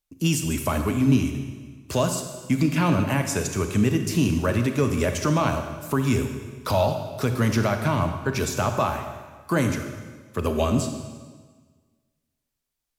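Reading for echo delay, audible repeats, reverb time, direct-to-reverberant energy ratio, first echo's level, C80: no echo, no echo, 1.5 s, 6.0 dB, no echo, 8.5 dB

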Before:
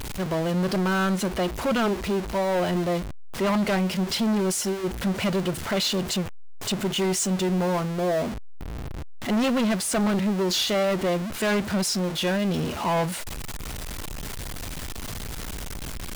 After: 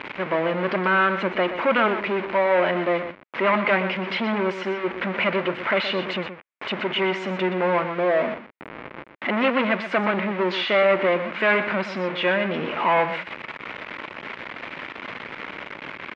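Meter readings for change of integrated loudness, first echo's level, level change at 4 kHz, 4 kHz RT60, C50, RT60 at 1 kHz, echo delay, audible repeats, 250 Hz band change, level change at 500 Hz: +3.0 dB, -10.5 dB, -1.5 dB, no reverb, no reverb, no reverb, 123 ms, 1, -3.0 dB, +4.0 dB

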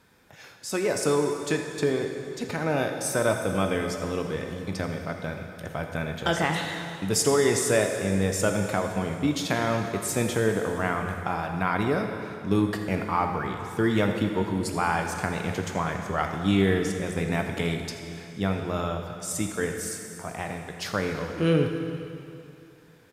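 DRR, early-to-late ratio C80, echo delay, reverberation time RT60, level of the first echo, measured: 3.5 dB, 5.5 dB, 83 ms, 2.7 s, -14.5 dB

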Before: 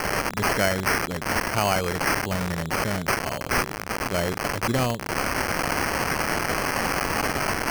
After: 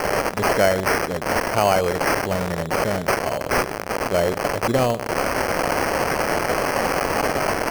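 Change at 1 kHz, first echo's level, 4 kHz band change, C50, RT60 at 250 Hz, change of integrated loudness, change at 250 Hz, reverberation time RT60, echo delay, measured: +4.0 dB, -18.5 dB, +0.5 dB, no reverb, no reverb, +3.5 dB, +2.5 dB, no reverb, 128 ms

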